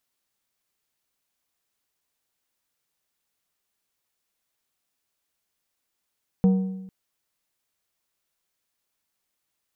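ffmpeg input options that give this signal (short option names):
-f lavfi -i "aevalsrc='0.224*pow(10,-3*t/1)*sin(2*PI*189*t)+0.0596*pow(10,-3*t/0.76)*sin(2*PI*472.5*t)+0.0158*pow(10,-3*t/0.66)*sin(2*PI*756*t)+0.00422*pow(10,-3*t/0.617)*sin(2*PI*945*t)+0.00112*pow(10,-3*t/0.57)*sin(2*PI*1228.5*t)':d=0.45:s=44100"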